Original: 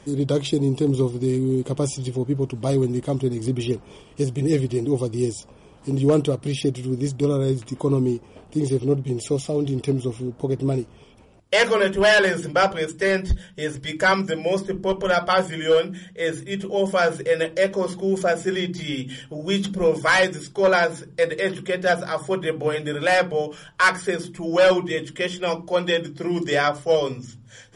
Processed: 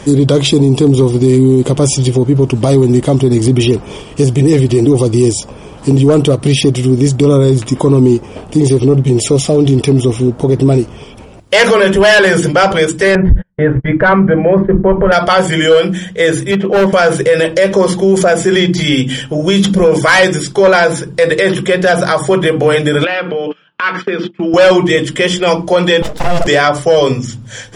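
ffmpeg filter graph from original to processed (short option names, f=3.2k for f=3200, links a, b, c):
-filter_complex "[0:a]asettb=1/sr,asplit=3[a][b][c];[a]atrim=end=13.154[d];[b]atrim=start=13.15:end=15.12,asetpts=PTS-STARTPTS,afade=t=in:d=0.004:c=qsin,afade=t=out:st=1.966:d=0.004:c=qsin,lowpass=f=1.8k:w=0.5412,lowpass=f=1.8k:w=1.3066,agate=range=-40dB:threshold=-36dB:ratio=16:release=100:detection=peak,lowshelf=f=130:g=11.5[e];[c]atrim=start=15.116[f];[d][e]acrossfade=d=0.004:c1=hsin:c2=qsin[g];[g][f]acrossfade=d=0.004:c1=qsin:c2=hsin,asettb=1/sr,asplit=3[h][i][j];[h]atrim=end=16.514[k];[i]atrim=start=16.51:end=16.93,asetpts=PTS-STARTPTS,afade=t=in:d=0.004:c=qsin,afade=t=out:st=0.416:d=0.004:c=qsin,highpass=170,lowpass=2.3k,asoftclip=type=hard:threshold=-23.5dB[l];[j]atrim=start=16.926[m];[k][l]acrossfade=d=0.004:c1=hsin:c2=qsin[n];[n][m]acrossfade=d=0.004:c1=qsin:c2=hsin,asettb=1/sr,asplit=3[o][p][q];[o]atrim=end=23.044[r];[p]atrim=start=23.04:end=24.54,asetpts=PTS-STARTPTS,afade=t=in:d=0.004:c=qsin,afade=t=out:st=1.496:d=0.004:c=qsin,agate=range=-26dB:threshold=-35dB:ratio=16:release=100:detection=peak,acompressor=threshold=-30dB:ratio=16:attack=3.2:release=140:knee=1:detection=peak,highpass=200,equalizer=f=220:t=q:w=4:g=8,equalizer=f=340:t=q:w=4:g=4,equalizer=f=690:t=q:w=4:g=-4,equalizer=f=1.3k:t=q:w=4:g=6,equalizer=f=2.7k:t=q:w=4:g=9,lowpass=f=4k:w=0.5412,lowpass=f=4k:w=1.3066[s];[q]atrim=start=24.536[t];[r][s]acrossfade=d=0.004:c1=hsin:c2=qsin[u];[u][t]acrossfade=d=0.004:c1=qsin:c2=hsin,asettb=1/sr,asplit=3[v][w][x];[v]atrim=end=26.024[y];[w]atrim=start=26.02:end=26.47,asetpts=PTS-STARTPTS,afade=t=in:d=0.004:c=qsin,afade=t=out:st=0.446:d=0.004:c=qsin,highpass=f=150:w=0.5412,highpass=f=150:w=1.3066,aeval=exprs='abs(val(0))':c=same[z];[x]atrim=start=26.466[aa];[y][z]acrossfade=d=0.004:c1=hsin:c2=qsin[ab];[ab][aa]acrossfade=d=0.004:c1=qsin:c2=hsin,acontrast=75,alimiter=level_in=11.5dB:limit=-1dB:release=50:level=0:latency=1,volume=-1dB"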